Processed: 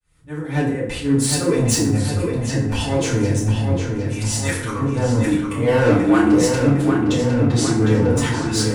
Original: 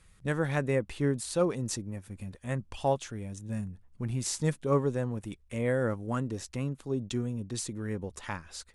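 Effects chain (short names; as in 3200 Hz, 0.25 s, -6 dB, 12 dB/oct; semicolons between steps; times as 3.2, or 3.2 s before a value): opening faded in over 1.43 s; 4.03–4.79 Chebyshev high-pass 1200 Hz, order 3; in parallel at -2.5 dB: compressor 6:1, threshold -38 dBFS, peak gain reduction 16 dB; on the sum: auto swell 0.243 s; soft clip -30.5 dBFS, distortion -10 dB; 5.89–6.43 frequency shift +82 Hz; 7–7.73 air absorption 59 m; on a send: darkening echo 0.757 s, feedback 66%, low-pass 3800 Hz, level -5 dB; on the sum: FDN reverb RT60 0.71 s, low-frequency decay 1.1×, high-frequency decay 0.65×, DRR -9 dB; gain +8.5 dB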